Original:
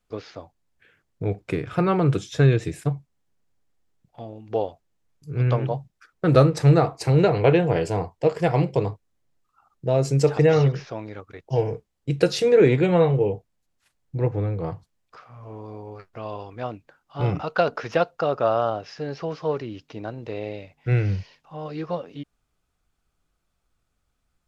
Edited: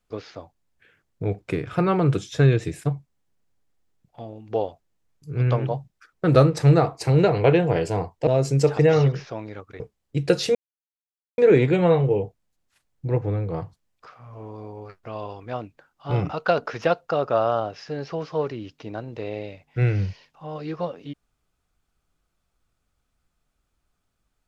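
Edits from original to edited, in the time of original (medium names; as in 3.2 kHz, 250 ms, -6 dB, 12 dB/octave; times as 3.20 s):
8.27–9.87 s: delete
11.40–11.73 s: delete
12.48 s: insert silence 0.83 s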